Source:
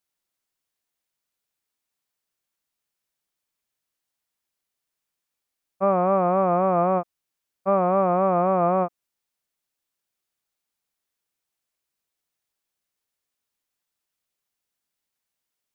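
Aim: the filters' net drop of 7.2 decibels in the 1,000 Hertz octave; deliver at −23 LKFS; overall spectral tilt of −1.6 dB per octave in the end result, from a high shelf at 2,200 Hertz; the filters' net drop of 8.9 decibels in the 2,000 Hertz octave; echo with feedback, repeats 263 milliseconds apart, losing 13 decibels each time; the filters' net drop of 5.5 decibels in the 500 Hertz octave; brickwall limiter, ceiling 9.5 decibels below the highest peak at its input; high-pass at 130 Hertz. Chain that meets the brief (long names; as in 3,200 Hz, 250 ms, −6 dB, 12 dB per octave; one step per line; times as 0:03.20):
high-pass filter 130 Hz
parametric band 500 Hz −4 dB
parametric band 1,000 Hz −6 dB
parametric band 2,000 Hz −6.5 dB
high-shelf EQ 2,200 Hz −6 dB
brickwall limiter −24.5 dBFS
repeating echo 263 ms, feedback 22%, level −13 dB
level +12 dB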